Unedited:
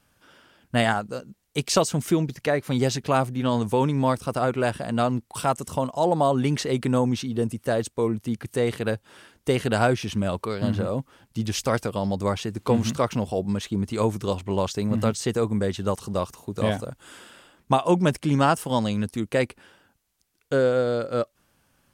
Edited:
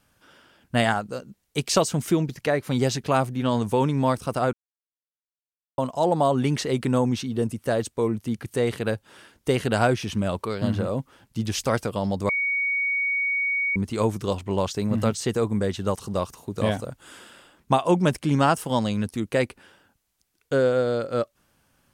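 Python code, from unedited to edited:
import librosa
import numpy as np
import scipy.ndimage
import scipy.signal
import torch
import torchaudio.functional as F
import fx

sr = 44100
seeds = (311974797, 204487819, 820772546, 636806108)

y = fx.edit(x, sr, fx.silence(start_s=4.53, length_s=1.25),
    fx.bleep(start_s=12.29, length_s=1.47, hz=2240.0, db=-21.5), tone=tone)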